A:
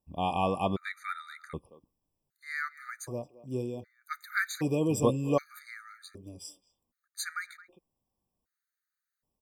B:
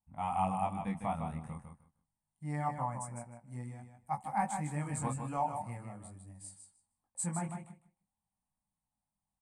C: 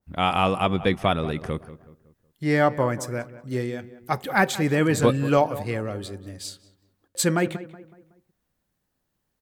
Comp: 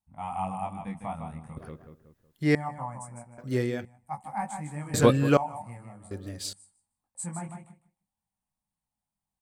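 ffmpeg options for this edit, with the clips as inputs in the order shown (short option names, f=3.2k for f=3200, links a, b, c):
-filter_complex "[2:a]asplit=4[a][b][c][d];[1:a]asplit=5[e][f][g][h][i];[e]atrim=end=1.572[j];[a]atrim=start=1.568:end=2.552[k];[f]atrim=start=2.548:end=3.382[l];[b]atrim=start=3.378:end=3.852[m];[g]atrim=start=3.848:end=4.942[n];[c]atrim=start=4.938:end=5.372[o];[h]atrim=start=5.368:end=6.112[p];[d]atrim=start=6.108:end=6.532[q];[i]atrim=start=6.528[r];[j][k]acrossfade=d=0.004:c1=hsin:c2=hsin[s];[s][l]acrossfade=d=0.004:c1=hsin:c2=hsin[t];[t][m]acrossfade=d=0.004:c1=hsin:c2=hsin[u];[u][n]acrossfade=d=0.004:c1=hsin:c2=hsin[v];[v][o]acrossfade=d=0.004:c1=hsin:c2=hsin[w];[w][p]acrossfade=d=0.004:c1=hsin:c2=hsin[x];[x][q]acrossfade=d=0.004:c1=hsin:c2=hsin[y];[y][r]acrossfade=d=0.004:c1=hsin:c2=hsin"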